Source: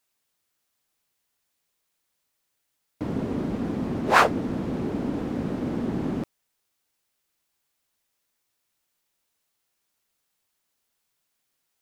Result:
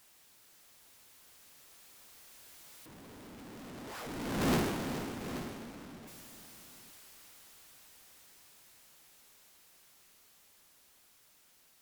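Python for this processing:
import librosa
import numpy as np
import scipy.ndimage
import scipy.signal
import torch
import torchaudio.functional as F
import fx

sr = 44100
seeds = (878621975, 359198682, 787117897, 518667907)

y = np.sign(x) * np.sqrt(np.mean(np.square(x)))
y = fx.doppler_pass(y, sr, speed_mps=17, closest_m=1.4, pass_at_s=4.52)
y = fx.echo_multitap(y, sr, ms=(416, 829), db=(-11.5, -12.0))
y = y * 10.0 ** (4.5 / 20.0)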